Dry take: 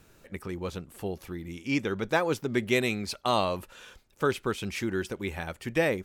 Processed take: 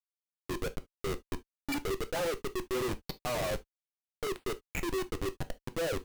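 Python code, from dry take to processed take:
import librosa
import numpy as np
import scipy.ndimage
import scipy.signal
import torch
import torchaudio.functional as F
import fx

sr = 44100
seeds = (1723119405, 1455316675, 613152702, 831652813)

y = fx.spec_topn(x, sr, count=8)
y = scipy.signal.sosfilt(scipy.signal.ellip(3, 1.0, 40, [350.0, 7700.0], 'bandpass', fs=sr, output='sos'), y)
y = fx.schmitt(y, sr, flips_db=-35.5)
y = fx.rev_gated(y, sr, seeds[0], gate_ms=90, shape='falling', drr_db=10.0)
y = y * 10.0 ** (2.0 / 20.0)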